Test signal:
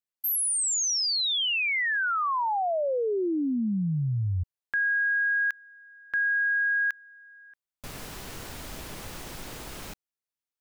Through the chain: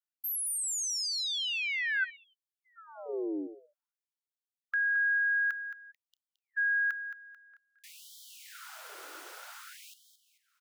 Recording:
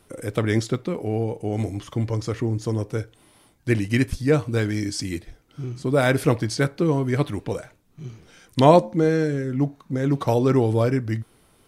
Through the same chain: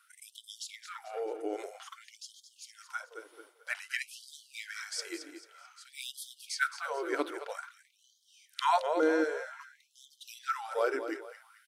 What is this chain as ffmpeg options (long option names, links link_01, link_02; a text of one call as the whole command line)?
ffmpeg -i in.wav -filter_complex "[0:a]equalizer=frequency=1400:width_type=o:width=0.27:gain=13,asplit=2[link_01][link_02];[link_02]aecho=0:1:220|440|660|880:0.282|0.11|0.0429|0.0167[link_03];[link_01][link_03]amix=inputs=2:normalize=0,afftfilt=real='re*gte(b*sr/1024,280*pow(3100/280,0.5+0.5*sin(2*PI*0.52*pts/sr)))':imag='im*gte(b*sr/1024,280*pow(3100/280,0.5+0.5*sin(2*PI*0.52*pts/sr)))':win_size=1024:overlap=0.75,volume=-7dB" out.wav